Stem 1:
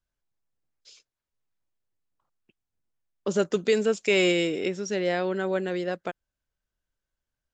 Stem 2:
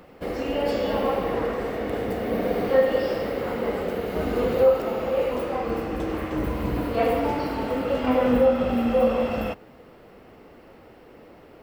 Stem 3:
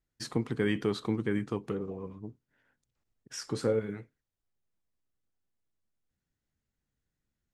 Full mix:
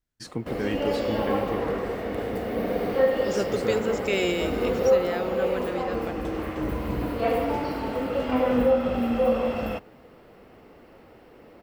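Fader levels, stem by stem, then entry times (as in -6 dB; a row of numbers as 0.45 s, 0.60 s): -4.0 dB, -2.0 dB, -1.5 dB; 0.00 s, 0.25 s, 0.00 s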